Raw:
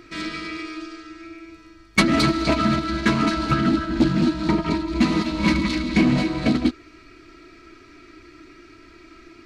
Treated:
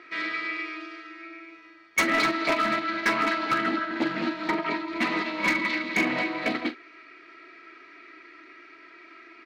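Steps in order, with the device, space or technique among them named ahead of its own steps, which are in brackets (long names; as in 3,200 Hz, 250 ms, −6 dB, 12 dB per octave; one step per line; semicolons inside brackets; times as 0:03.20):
megaphone (band-pass filter 510–3,100 Hz; parametric band 2,000 Hz +6.5 dB 0.49 octaves; hard clipping −18 dBFS, distortion −11 dB; double-tracking delay 42 ms −13 dB)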